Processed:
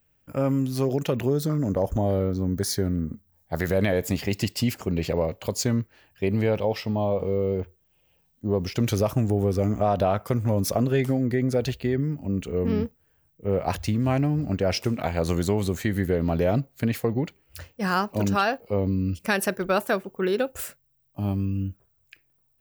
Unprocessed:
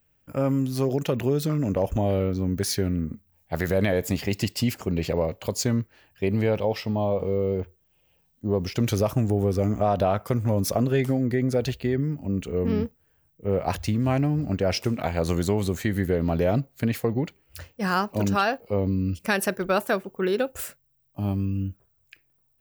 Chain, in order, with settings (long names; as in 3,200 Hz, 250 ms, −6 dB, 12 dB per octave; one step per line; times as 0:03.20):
0:01.26–0:03.60: parametric band 2,600 Hz −14.5 dB 0.43 octaves